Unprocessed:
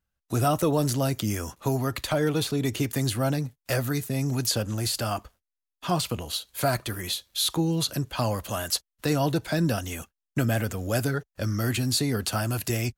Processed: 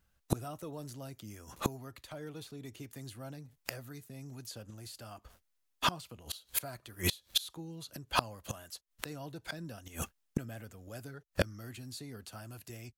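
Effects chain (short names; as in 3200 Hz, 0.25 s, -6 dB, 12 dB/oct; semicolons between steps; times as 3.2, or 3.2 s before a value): flipped gate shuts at -23 dBFS, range -28 dB; gain +8 dB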